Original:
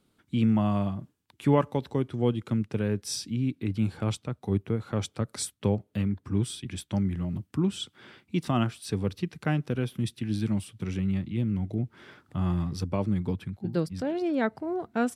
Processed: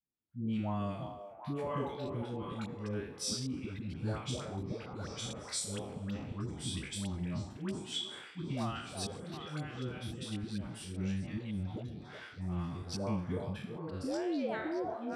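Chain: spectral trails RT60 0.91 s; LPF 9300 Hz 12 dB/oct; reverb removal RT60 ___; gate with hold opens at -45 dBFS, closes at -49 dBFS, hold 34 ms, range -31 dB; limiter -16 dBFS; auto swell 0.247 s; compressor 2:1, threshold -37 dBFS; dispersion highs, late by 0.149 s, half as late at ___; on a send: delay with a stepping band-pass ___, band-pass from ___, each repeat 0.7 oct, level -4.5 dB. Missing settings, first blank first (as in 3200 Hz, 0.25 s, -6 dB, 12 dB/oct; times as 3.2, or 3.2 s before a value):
0.58 s, 620 Hz, 0.366 s, 630 Hz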